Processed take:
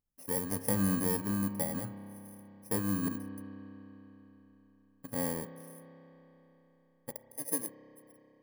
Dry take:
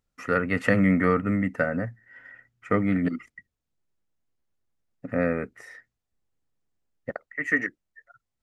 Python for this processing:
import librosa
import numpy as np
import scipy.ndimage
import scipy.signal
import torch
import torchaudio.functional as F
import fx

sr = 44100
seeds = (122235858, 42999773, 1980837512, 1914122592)

y = fx.bit_reversed(x, sr, seeds[0], block=32)
y = fx.peak_eq(y, sr, hz=3300.0, db=-9.5, octaves=1.4)
y = fx.rev_spring(y, sr, rt60_s=4.0, pass_ms=(30,), chirp_ms=45, drr_db=10.0)
y = y * librosa.db_to_amplitude(-9.0)